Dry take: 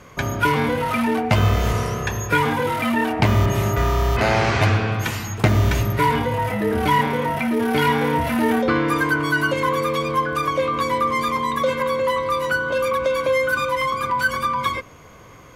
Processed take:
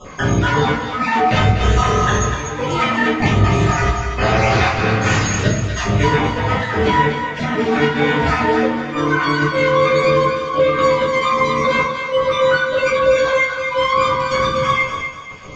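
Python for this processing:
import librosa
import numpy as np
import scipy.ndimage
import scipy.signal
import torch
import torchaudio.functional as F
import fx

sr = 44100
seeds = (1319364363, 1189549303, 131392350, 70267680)

p1 = fx.spec_dropout(x, sr, seeds[0], share_pct=28)
p2 = scipy.signal.sosfilt(scipy.signal.cheby1(5, 1.0, 7100.0, 'lowpass', fs=sr, output='sos'), p1)
p3 = fx.low_shelf(p2, sr, hz=180.0, db=-5.0)
p4 = fx.over_compress(p3, sr, threshold_db=-28.0, ratio=-1.0)
p5 = p3 + (p4 * 10.0 ** (1.0 / 20.0))
p6 = fx.step_gate(p5, sr, bpm=151, pattern='xxxxxxx...xxxxx.', floor_db=-12.0, edge_ms=4.5)
p7 = p6 + fx.echo_thinned(p6, sr, ms=244, feedback_pct=36, hz=700.0, wet_db=-6.5, dry=0)
p8 = fx.room_shoebox(p7, sr, seeds[1], volume_m3=74.0, walls='mixed', distance_m=2.1)
y = p8 * 10.0 ** (-7.0 / 20.0)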